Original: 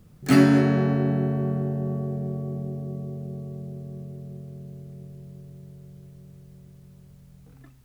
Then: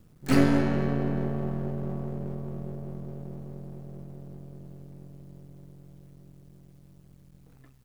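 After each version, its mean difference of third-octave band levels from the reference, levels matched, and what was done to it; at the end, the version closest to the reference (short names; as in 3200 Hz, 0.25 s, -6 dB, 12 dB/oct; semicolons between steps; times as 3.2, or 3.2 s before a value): 2.5 dB: half-wave gain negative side -12 dB; gain -1.5 dB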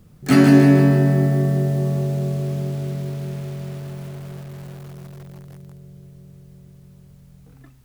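5.0 dB: lo-fi delay 0.156 s, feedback 55%, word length 7-bit, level -5 dB; gain +3 dB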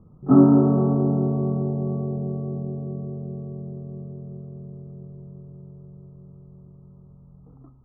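3.5 dB: rippled Chebyshev low-pass 1300 Hz, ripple 3 dB; gain +3.5 dB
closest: first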